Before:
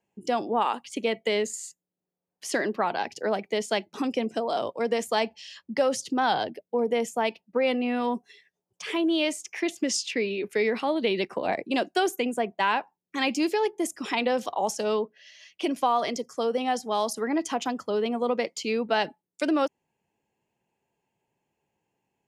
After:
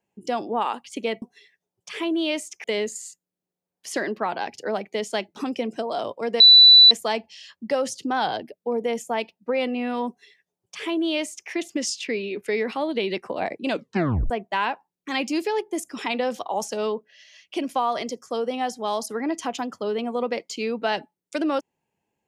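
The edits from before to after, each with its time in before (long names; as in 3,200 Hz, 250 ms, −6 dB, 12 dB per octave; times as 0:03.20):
0:04.98: insert tone 3,970 Hz −7 dBFS 0.51 s
0:08.15–0:09.57: duplicate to 0:01.22
0:11.75: tape stop 0.62 s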